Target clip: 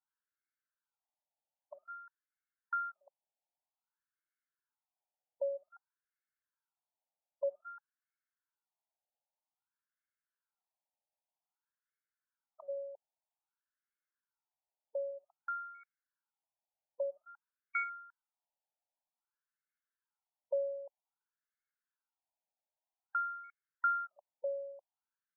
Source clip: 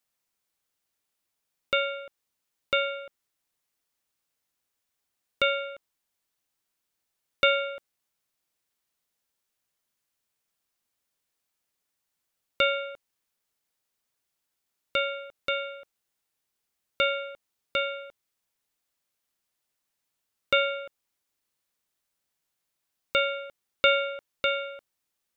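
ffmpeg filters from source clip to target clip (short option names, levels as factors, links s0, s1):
-af "aecho=1:1:1.3:0.6,afftfilt=real='re*between(b*sr/1024,660*pow(1600/660,0.5+0.5*sin(2*PI*0.52*pts/sr))/1.41,660*pow(1600/660,0.5+0.5*sin(2*PI*0.52*pts/sr))*1.41)':imag='im*between(b*sr/1024,660*pow(1600/660,0.5+0.5*sin(2*PI*0.52*pts/sr))/1.41,660*pow(1600/660,0.5+0.5*sin(2*PI*0.52*pts/sr))*1.41)':win_size=1024:overlap=0.75,volume=0.473"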